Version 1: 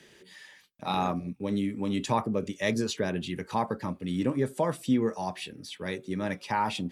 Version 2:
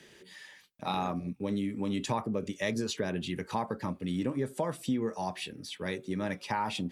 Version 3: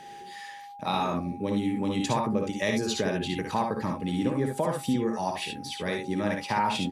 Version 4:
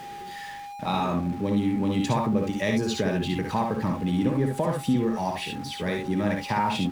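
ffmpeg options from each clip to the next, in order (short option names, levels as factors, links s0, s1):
-af "acompressor=threshold=0.0355:ratio=2.5"
-filter_complex "[0:a]aeval=exprs='val(0)+0.00398*sin(2*PI*810*n/s)':c=same,asplit=2[s0][s1];[s1]aecho=0:1:58|72:0.531|0.473[s2];[s0][s2]amix=inputs=2:normalize=0,volume=1.5"
-af "aeval=exprs='val(0)+0.5*0.0112*sgn(val(0))':c=same,bass=f=250:g=5,treble=f=4000:g=-4"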